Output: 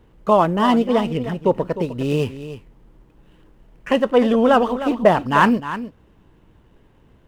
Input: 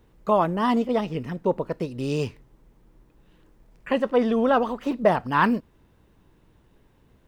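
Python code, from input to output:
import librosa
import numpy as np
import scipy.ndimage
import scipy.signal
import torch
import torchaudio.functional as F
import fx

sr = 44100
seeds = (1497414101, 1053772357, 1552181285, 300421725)

p1 = scipy.ndimage.median_filter(x, 9, mode='constant')
p2 = fx.peak_eq(p1, sr, hz=3000.0, db=5.0, octaves=0.24)
p3 = p2 + fx.echo_single(p2, sr, ms=306, db=-12.5, dry=0)
y = p3 * librosa.db_to_amplitude(5.5)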